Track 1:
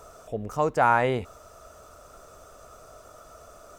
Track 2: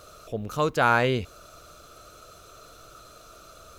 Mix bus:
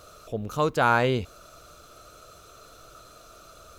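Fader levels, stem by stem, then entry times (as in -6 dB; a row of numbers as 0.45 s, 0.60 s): -13.0 dB, -1.0 dB; 0.00 s, 0.00 s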